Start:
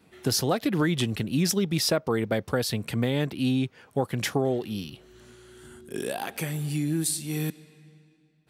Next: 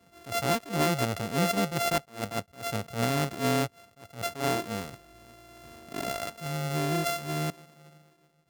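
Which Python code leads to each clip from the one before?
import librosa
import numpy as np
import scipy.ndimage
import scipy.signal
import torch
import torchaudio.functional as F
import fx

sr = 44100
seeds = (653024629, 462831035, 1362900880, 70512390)

y = np.r_[np.sort(x[:len(x) // 64 * 64].reshape(-1, 64), axis=1).ravel(), x[len(x) // 64 * 64:]]
y = fx.attack_slew(y, sr, db_per_s=180.0)
y = F.gain(torch.from_numpy(y), -1.5).numpy()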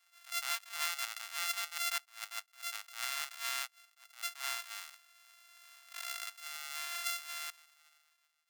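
y = scipy.signal.sosfilt(scipy.signal.bessel(6, 1700.0, 'highpass', norm='mag', fs=sr, output='sos'), x)
y = F.gain(torch.from_numpy(y), -2.5).numpy()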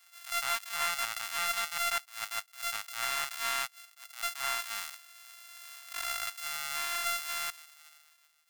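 y = fx.high_shelf(x, sr, hz=7700.0, db=5.5)
y = 10.0 ** (-28.5 / 20.0) * np.tanh(y / 10.0 ** (-28.5 / 20.0))
y = F.gain(torch.from_numpy(y), 8.0).numpy()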